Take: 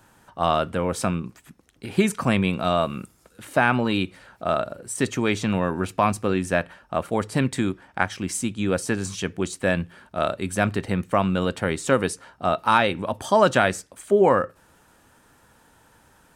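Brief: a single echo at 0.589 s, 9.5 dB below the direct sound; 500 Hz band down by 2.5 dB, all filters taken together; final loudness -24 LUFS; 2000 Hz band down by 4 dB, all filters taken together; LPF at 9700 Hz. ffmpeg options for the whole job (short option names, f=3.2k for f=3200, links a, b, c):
-af "lowpass=9.7k,equalizer=f=500:t=o:g=-3,equalizer=f=2k:t=o:g=-5.5,aecho=1:1:589:0.335,volume=1.5dB"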